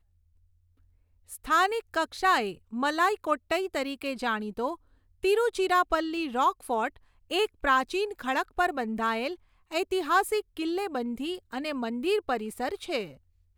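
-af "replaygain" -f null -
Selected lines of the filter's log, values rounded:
track_gain = +7.8 dB
track_peak = 0.188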